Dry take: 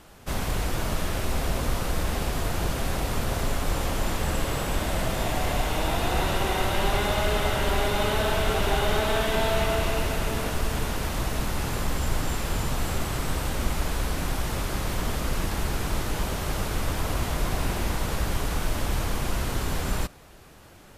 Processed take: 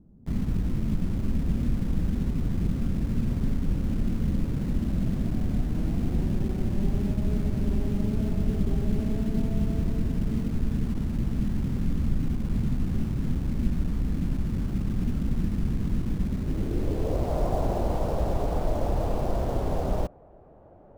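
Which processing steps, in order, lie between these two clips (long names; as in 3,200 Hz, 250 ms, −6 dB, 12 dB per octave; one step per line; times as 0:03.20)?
low-pass filter sweep 220 Hz → 650 Hz, 0:16.33–0:17.37
in parallel at −7 dB: bit-depth reduction 6 bits, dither none
on the sum: level −3 dB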